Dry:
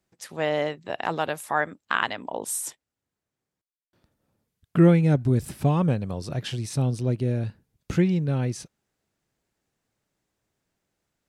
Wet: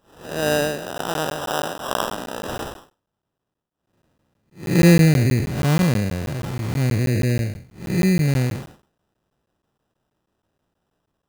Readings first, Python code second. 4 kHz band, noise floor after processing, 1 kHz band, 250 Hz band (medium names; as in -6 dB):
+7.0 dB, -81 dBFS, +1.5 dB, +4.5 dB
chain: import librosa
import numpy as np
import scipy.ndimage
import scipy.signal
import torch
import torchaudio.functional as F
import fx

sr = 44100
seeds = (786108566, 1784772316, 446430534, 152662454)

y = fx.spec_blur(x, sr, span_ms=220.0)
y = fx.sample_hold(y, sr, seeds[0], rate_hz=2200.0, jitter_pct=0)
y = fx.buffer_crackle(y, sr, first_s=0.98, period_s=0.16, block=512, kind='zero')
y = y * librosa.db_to_amplitude(7.0)